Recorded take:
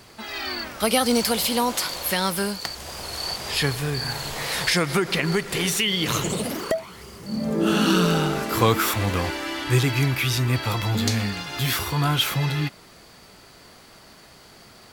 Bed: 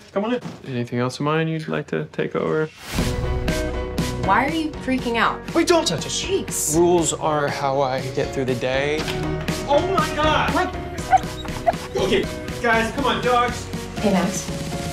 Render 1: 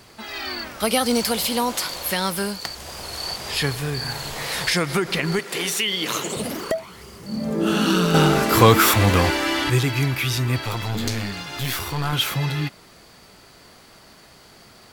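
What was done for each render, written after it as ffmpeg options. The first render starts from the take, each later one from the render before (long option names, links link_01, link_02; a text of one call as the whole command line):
ffmpeg -i in.wav -filter_complex "[0:a]asettb=1/sr,asplit=3[link_01][link_02][link_03];[link_01]atrim=end=5.394[link_04];[link_02]atrim=start=5.39:end=6.37,asetpts=PTS-STARTPTS,afade=type=in:duration=0.004:curve=qsin,afade=type=out:start_time=0.976:duration=0.004:curve=qsin,highpass=270[link_05];[link_03]atrim=start=6.366[link_06];[link_04][link_05]acrossfade=duration=0.004:curve1=hsin:curve2=qsin[link_07];[link_07][link_06]acrossfade=duration=0.004:curve1=qsin:curve2=hsin,asettb=1/sr,asplit=3[link_08][link_09][link_10];[link_08]atrim=end=8.144[link_11];[link_09]atrim=start=8.14:end=9.7,asetpts=PTS-STARTPTS,afade=type=in:duration=0.004:curve=qsin,afade=type=out:start_time=1.556:duration=0.004:curve=qsin,acontrast=90[link_12];[link_10]atrim=start=9.696[link_13];[link_11][link_12]acrossfade=duration=0.004:curve1=hsin:curve2=qsin[link_14];[link_14][link_13]acrossfade=duration=0.004:curve1=qsin:curve2=hsin,asettb=1/sr,asplit=3[link_15][link_16][link_17];[link_15]atrim=end=10.614[link_18];[link_16]atrim=start=10.61:end=12.13,asetpts=PTS-STARTPTS,afade=type=in:duration=0.004:curve=qsin,afade=type=out:start_time=1.516:duration=0.004:curve=qsin,aeval=exprs='clip(val(0),-1,0.0398)':channel_layout=same[link_19];[link_17]atrim=start=12.126[link_20];[link_18][link_19]acrossfade=duration=0.004:curve1=hsin:curve2=qsin[link_21];[link_21][link_20]acrossfade=duration=0.004:curve1=qsin:curve2=hsin" out.wav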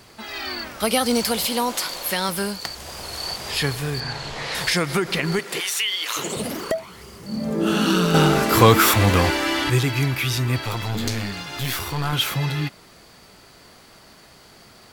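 ffmpeg -i in.wav -filter_complex "[0:a]asettb=1/sr,asplit=3[link_01][link_02][link_03];[link_01]atrim=end=1.454[link_04];[link_02]atrim=start=1.45:end=2.29,asetpts=PTS-STARTPTS,afade=type=in:duration=0.004:curve=qsin,afade=type=out:start_time=0.836:duration=0.004:curve=qsin,equalizer=frequency=86:width_type=o:width=1.2:gain=-10.5[link_05];[link_03]atrim=start=2.286[link_06];[link_04][link_05]acrossfade=duration=0.004:curve1=hsin:curve2=qsin[link_07];[link_07][link_06]acrossfade=duration=0.004:curve1=qsin:curve2=hsin,asettb=1/sr,asplit=3[link_08][link_09][link_10];[link_08]atrim=end=4.004[link_11];[link_09]atrim=start=4:end=4.55,asetpts=PTS-STARTPTS,afade=type=in:duration=0.004:curve=qsin,afade=type=out:start_time=0.546:duration=0.004:curve=qsin,lowpass=5400[link_12];[link_10]atrim=start=4.546[link_13];[link_11][link_12]acrossfade=duration=0.004:curve1=hsin:curve2=qsin[link_14];[link_14][link_13]acrossfade=duration=0.004:curve1=qsin:curve2=hsin,asplit=3[link_15][link_16][link_17];[link_15]afade=type=out:start_time=5.59:duration=0.02[link_18];[link_16]highpass=930,afade=type=in:start_time=5.59:duration=0.02,afade=type=out:start_time=6.16:duration=0.02[link_19];[link_17]afade=type=in:start_time=6.16:duration=0.02[link_20];[link_18][link_19][link_20]amix=inputs=3:normalize=0" out.wav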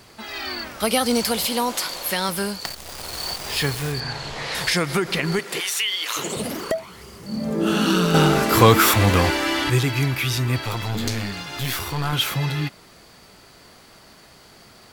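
ffmpeg -i in.wav -filter_complex "[0:a]asettb=1/sr,asplit=3[link_01][link_02][link_03];[link_01]atrim=end=2.654[link_04];[link_02]atrim=start=2.65:end=3.92,asetpts=PTS-STARTPTS,afade=type=in:duration=0.004:curve=qsin,afade=type=out:start_time=1.266:duration=0.004:curve=qsin,acrusher=bits=6:dc=4:mix=0:aa=0.000001[link_05];[link_03]atrim=start=3.916[link_06];[link_04][link_05]acrossfade=duration=0.004:curve1=hsin:curve2=qsin[link_07];[link_07][link_06]acrossfade=duration=0.004:curve1=qsin:curve2=hsin" out.wav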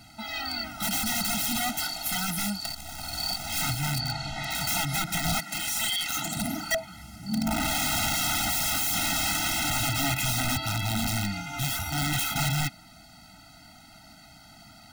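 ffmpeg -i in.wav -af "aeval=exprs='(mod(8.91*val(0)+1,2)-1)/8.91':channel_layout=same,afftfilt=real='re*eq(mod(floor(b*sr/1024/310),2),0)':imag='im*eq(mod(floor(b*sr/1024/310),2),0)':win_size=1024:overlap=0.75" out.wav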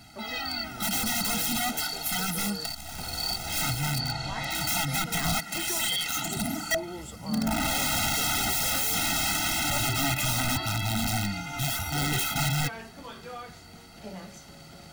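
ffmpeg -i in.wav -i bed.wav -filter_complex "[1:a]volume=-23dB[link_01];[0:a][link_01]amix=inputs=2:normalize=0" out.wav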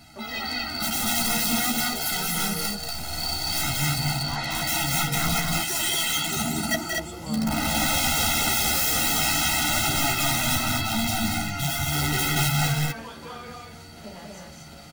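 ffmpeg -i in.wav -filter_complex "[0:a]asplit=2[link_01][link_02];[link_02]adelay=13,volume=-5dB[link_03];[link_01][link_03]amix=inputs=2:normalize=0,aecho=1:1:183.7|236.2:0.562|0.708" out.wav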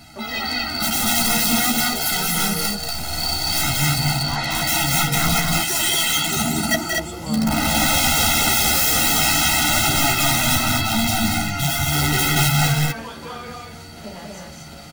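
ffmpeg -i in.wav -af "volume=5.5dB" out.wav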